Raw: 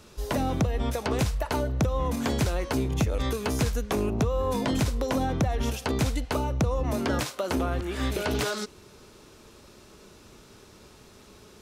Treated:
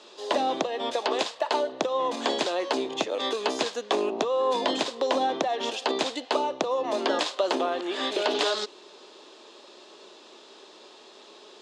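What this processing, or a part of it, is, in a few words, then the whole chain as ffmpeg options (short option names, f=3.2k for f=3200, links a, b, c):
phone speaker on a table: -filter_complex "[0:a]highpass=f=360:w=0.5412,highpass=f=360:w=1.3066,equalizer=f=460:t=q:w=4:g=-4,equalizer=f=1.4k:t=q:w=4:g=-8,equalizer=f=2.2k:t=q:w=4:g=-7,equalizer=f=3.5k:t=q:w=4:g=4,equalizer=f=5.8k:t=q:w=4:g=-7,lowpass=f=6.4k:w=0.5412,lowpass=f=6.4k:w=1.3066,asettb=1/sr,asplit=3[a][b][c];[a]atrim=end=0.994[d];[b]atrim=start=0.99:end=1.72,asetpts=PTS-STARTPTS,afade=t=in:d=0.004:c=qsin,afade=t=out:st=0.726:d=0.004:c=qsin,highpass=f=250:p=1[e];[c]atrim=start=1.716[f];[d][e]acrossfade=d=0.004:c1=hsin:c2=qsin[g];[g][f]acrossfade=d=0.004:c1=qsin:c2=hsin,volume=6.5dB"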